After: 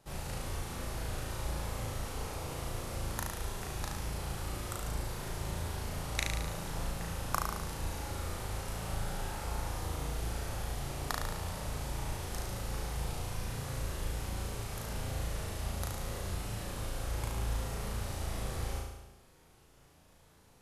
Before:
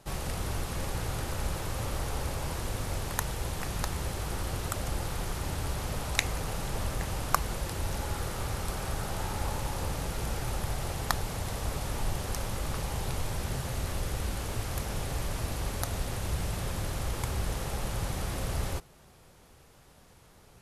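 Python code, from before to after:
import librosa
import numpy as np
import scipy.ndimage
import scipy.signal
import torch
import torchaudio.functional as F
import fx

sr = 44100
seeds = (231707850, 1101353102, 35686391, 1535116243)

y = fx.room_flutter(x, sr, wall_m=6.2, rt60_s=0.95)
y = y * librosa.db_to_amplitude(-8.5)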